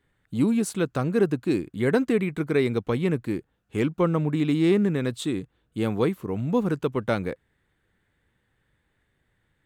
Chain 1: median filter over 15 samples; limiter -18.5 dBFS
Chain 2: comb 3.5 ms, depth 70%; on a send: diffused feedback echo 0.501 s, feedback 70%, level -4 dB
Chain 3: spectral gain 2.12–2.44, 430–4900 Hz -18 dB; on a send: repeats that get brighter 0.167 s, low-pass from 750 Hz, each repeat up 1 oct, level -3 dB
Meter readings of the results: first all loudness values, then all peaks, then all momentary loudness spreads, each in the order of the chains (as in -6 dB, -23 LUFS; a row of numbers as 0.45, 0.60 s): -28.0, -22.0, -23.0 LUFS; -18.5, -6.5, -8.0 dBFS; 7, 12, 9 LU